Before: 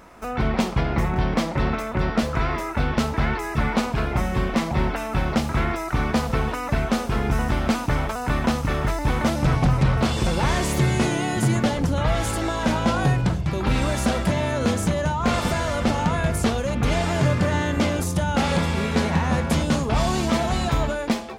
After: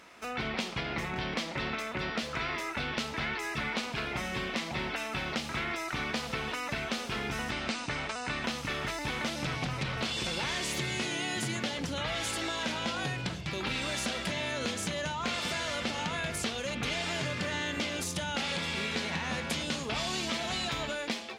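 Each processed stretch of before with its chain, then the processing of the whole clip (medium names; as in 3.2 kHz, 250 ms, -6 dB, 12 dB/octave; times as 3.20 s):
7.51–8.44 s: elliptic low-pass 9 kHz, stop band 50 dB + band-stop 3.3 kHz, Q 15
whole clip: frequency weighting D; compression, threshold -21 dBFS; trim -8.5 dB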